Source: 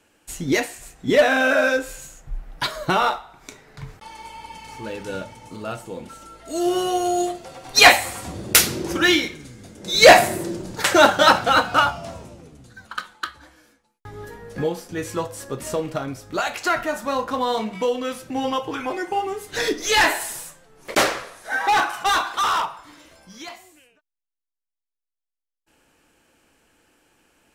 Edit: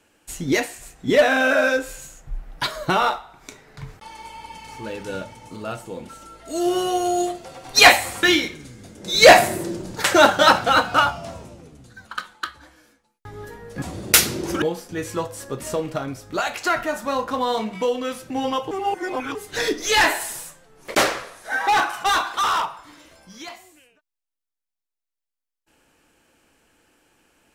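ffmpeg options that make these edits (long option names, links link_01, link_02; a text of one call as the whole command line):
ffmpeg -i in.wav -filter_complex "[0:a]asplit=6[link_01][link_02][link_03][link_04][link_05][link_06];[link_01]atrim=end=8.232[link_07];[link_02]atrim=start=9.028:end=14.622[link_08];[link_03]atrim=start=8.228:end=9.032[link_09];[link_04]atrim=start=14.618:end=18.712[link_10];[link_05]atrim=start=18.708:end=19.352,asetpts=PTS-STARTPTS,areverse[link_11];[link_06]atrim=start=19.348[link_12];[link_07][link_08]acrossfade=duration=0.004:curve1=hsin:curve2=hsin[link_13];[link_13][link_09]acrossfade=duration=0.004:curve1=hsin:curve2=hsin[link_14];[link_14][link_10]acrossfade=duration=0.004:curve1=hsin:curve2=hsin[link_15];[link_15][link_11]acrossfade=duration=0.004:curve1=hsin:curve2=hsin[link_16];[link_16][link_12]acrossfade=duration=0.004:curve1=hsin:curve2=hsin" out.wav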